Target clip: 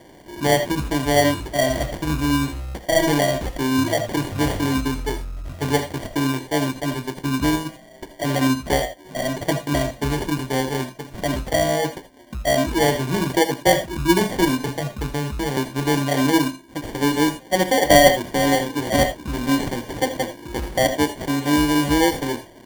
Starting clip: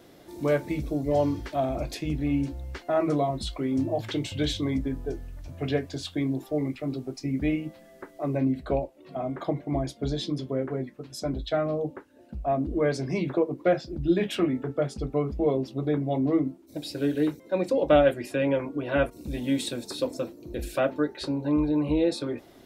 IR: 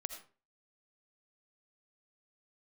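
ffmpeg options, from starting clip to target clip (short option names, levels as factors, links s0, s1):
-filter_complex "[0:a]asettb=1/sr,asplit=3[s0][s1][s2];[s0]atrim=end=14.684[s3];[s1]atrim=start=14.68:end=15.57,asetpts=PTS-STARTPTS,afade=t=in:d=0.004:c=qsin,afade=t=out:st=0.886:d=0.004:c=qsin,acrossover=split=250[s4][s5];[s5]acompressor=threshold=0.02:ratio=5[s6];[s4][s6]amix=inputs=2:normalize=0[s7];[s2]atrim=start=15.566[s8];[s3][s7]acrossfade=d=0.004:c1=hsin:c2=qsin[s9];[s9][s8]acrossfade=d=0.004:c1=qsin:c2=hsin,acrusher=samples=34:mix=1:aa=0.000001[s10];[1:a]atrim=start_sample=2205,atrim=end_sample=3969[s11];[s10][s11]afir=irnorm=-1:irlink=0,volume=2.66"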